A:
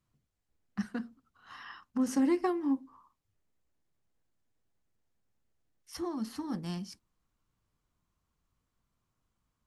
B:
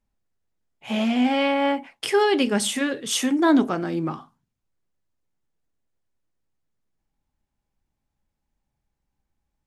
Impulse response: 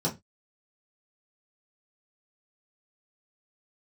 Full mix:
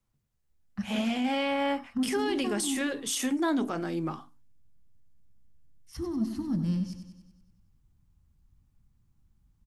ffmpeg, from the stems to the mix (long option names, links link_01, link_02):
-filter_complex "[0:a]asubboost=boost=11.5:cutoff=180,asoftclip=type=tanh:threshold=-16dB,volume=-3dB,asplit=2[link_01][link_02];[link_02]volume=-9.5dB[link_03];[1:a]highshelf=frequency=5600:gain=8.5,bandreject=frequency=60:width_type=h:width=6,bandreject=frequency=120:width_type=h:width=6,bandreject=frequency=180:width_type=h:width=6,bandreject=frequency=240:width_type=h:width=6,bandreject=frequency=300:width_type=h:width=6,volume=-5.5dB[link_04];[link_03]aecho=0:1:95|190|285|380|475|570|665|760|855:1|0.57|0.325|0.185|0.106|0.0602|0.0343|0.0195|0.0111[link_05];[link_01][link_04][link_05]amix=inputs=3:normalize=0,alimiter=limit=-21dB:level=0:latency=1:release=35"